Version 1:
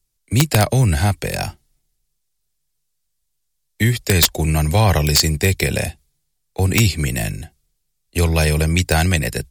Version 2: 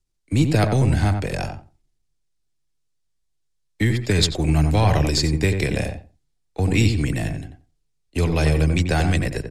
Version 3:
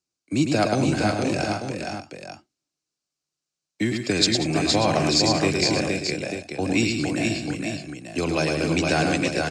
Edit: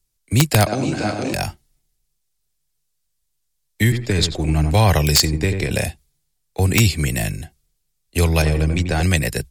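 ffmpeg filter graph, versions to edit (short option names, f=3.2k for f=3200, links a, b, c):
-filter_complex "[1:a]asplit=3[a][b][c];[0:a]asplit=5[d][e][f][g][h];[d]atrim=end=0.672[i];[2:a]atrim=start=0.668:end=1.342[j];[e]atrim=start=1.338:end=3.922[k];[a]atrim=start=3.918:end=4.742[l];[f]atrim=start=4.738:end=5.252[m];[b]atrim=start=5.248:end=5.712[n];[g]atrim=start=5.708:end=8.422[o];[c]atrim=start=8.418:end=9.032[p];[h]atrim=start=9.028[q];[i][j]acrossfade=d=0.004:c1=hsin:c2=hsin[r];[r][k]acrossfade=d=0.004:c1=hsin:c2=hsin[s];[s][l]acrossfade=d=0.004:c1=hsin:c2=hsin[t];[t][m]acrossfade=d=0.004:c1=hsin:c2=hsin[u];[u][n]acrossfade=d=0.004:c1=hsin:c2=hsin[v];[v][o]acrossfade=d=0.004:c1=hsin:c2=hsin[w];[w][p]acrossfade=d=0.004:c1=hsin:c2=hsin[x];[x][q]acrossfade=d=0.004:c1=hsin:c2=hsin"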